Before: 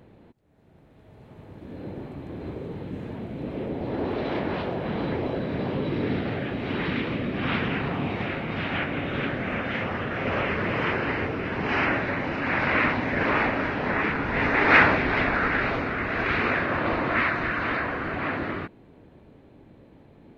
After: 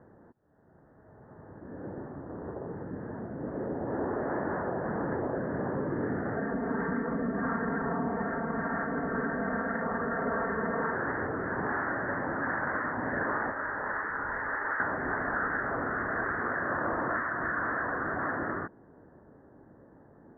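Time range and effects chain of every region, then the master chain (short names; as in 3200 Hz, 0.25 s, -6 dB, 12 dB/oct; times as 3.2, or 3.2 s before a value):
2.2–2.67 Bessel low-pass 2300 Hz + Doppler distortion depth 0.78 ms
6.36–10.94 high shelf 3100 Hz -11.5 dB + comb 4.4 ms, depth 94%
13.52–14.8 bell 190 Hz -12 dB 2.7 oct + notch 720 Hz + compressor 2:1, threshold -27 dBFS
whole clip: tilt +2 dB/oct; compressor 6:1, threshold -26 dBFS; steep low-pass 1800 Hz 96 dB/oct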